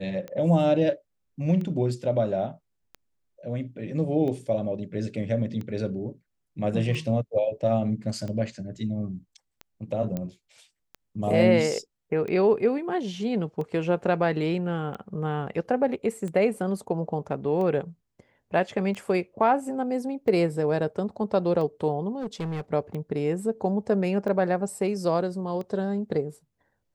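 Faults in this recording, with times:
scratch tick 45 rpm −24 dBFS
0:10.17: click −18 dBFS
0:22.15–0:22.61: clipping −27 dBFS

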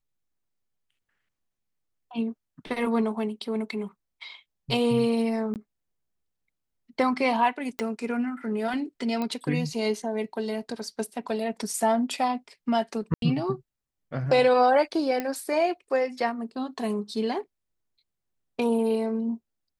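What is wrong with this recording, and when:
0:05.54–0:05.56: drop-out 18 ms
0:07.79: click −15 dBFS
0:09.22: click −18 dBFS
0:13.14–0:13.22: drop-out 82 ms
0:15.20: click −15 dBFS

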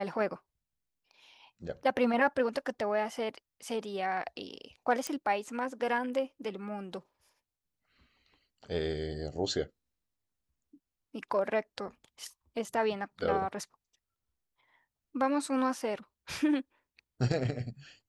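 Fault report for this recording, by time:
0:05.07: click −19 dBFS

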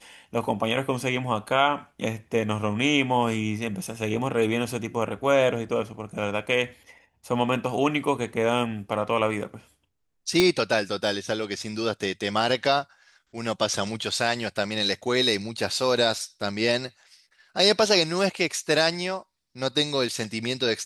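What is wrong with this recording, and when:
0:10.40: click −6 dBFS

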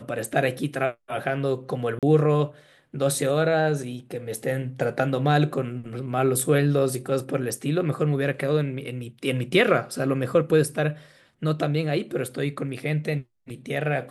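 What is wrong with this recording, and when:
0:01.99–0:02.03: drop-out 37 ms

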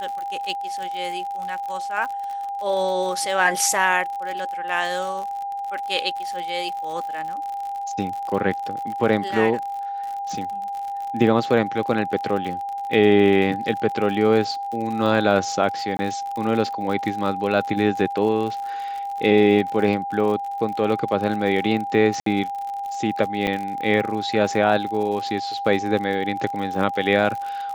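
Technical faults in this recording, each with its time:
surface crackle 59 per second −29 dBFS
whistle 800 Hz −26 dBFS
0:15.97–0:15.99: drop-out 20 ms
0:22.20–0:22.26: drop-out 63 ms
0:23.47: drop-out 4.5 ms

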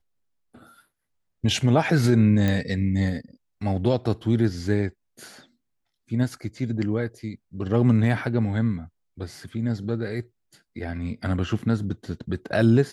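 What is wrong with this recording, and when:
0:02.48: click −12 dBFS

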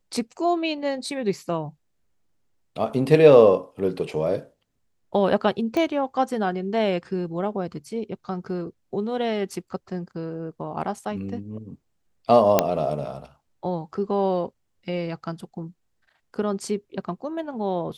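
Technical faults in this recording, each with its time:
0:05.77: click −14 dBFS
0:12.59: click −2 dBFS

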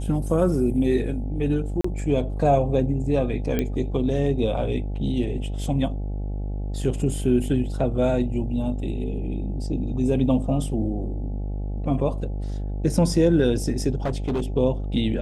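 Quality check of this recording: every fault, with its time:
mains buzz 50 Hz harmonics 17 −28 dBFS
0:01.81–0:01.84: drop-out 34 ms
0:03.59: click −11 dBFS
0:13.96–0:14.40: clipping −20.5 dBFS

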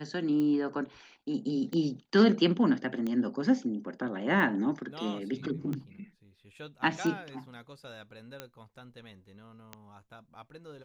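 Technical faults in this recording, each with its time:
scratch tick 45 rpm −22 dBFS

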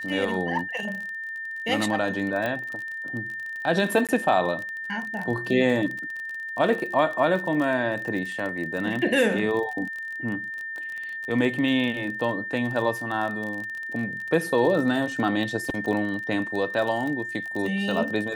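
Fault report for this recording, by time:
surface crackle 30 per second −30 dBFS
whistle 1,800 Hz −31 dBFS
0:02.46: click −16 dBFS
0:04.07–0:04.09: drop-out 17 ms

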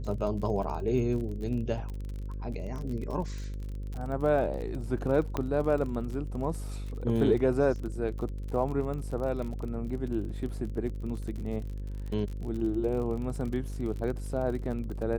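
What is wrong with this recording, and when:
mains buzz 50 Hz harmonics 11 −36 dBFS
surface crackle 37 per second −36 dBFS
0:05.37: click −17 dBFS

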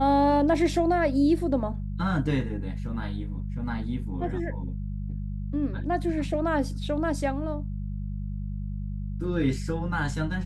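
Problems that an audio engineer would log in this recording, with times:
mains hum 50 Hz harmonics 4 −32 dBFS

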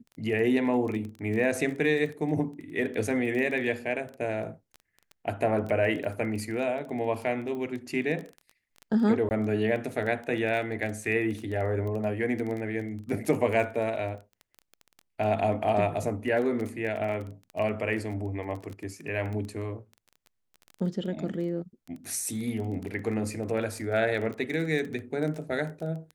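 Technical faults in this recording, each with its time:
surface crackle 15 per second −33 dBFS
0:09.29–0:09.31: drop-out 19 ms

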